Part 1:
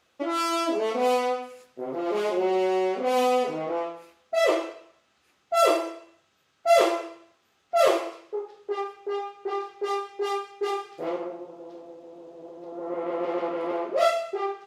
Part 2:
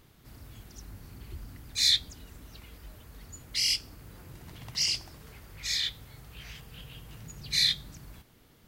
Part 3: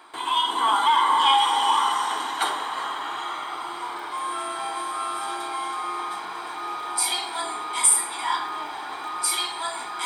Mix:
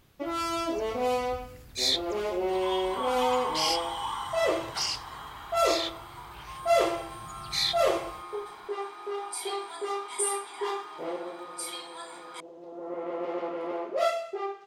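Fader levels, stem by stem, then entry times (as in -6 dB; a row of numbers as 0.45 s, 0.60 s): -4.5 dB, -3.0 dB, -13.0 dB; 0.00 s, 0.00 s, 2.35 s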